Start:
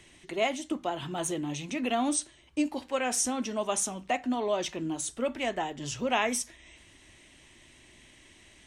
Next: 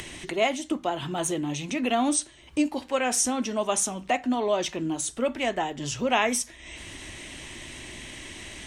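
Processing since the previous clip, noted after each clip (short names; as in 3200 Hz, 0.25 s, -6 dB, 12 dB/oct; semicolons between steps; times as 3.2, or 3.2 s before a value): upward compressor, threshold -33 dBFS; gain +4 dB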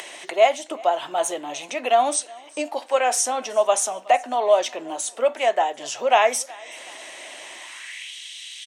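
high-pass sweep 630 Hz -> 3400 Hz, 7.54–8.14; feedback echo 0.371 s, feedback 42%, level -24 dB; gain +2 dB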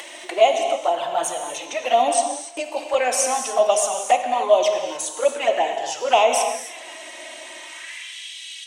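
envelope flanger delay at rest 4 ms, full sweep at -14.5 dBFS; non-linear reverb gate 0.32 s flat, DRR 4 dB; gain +3 dB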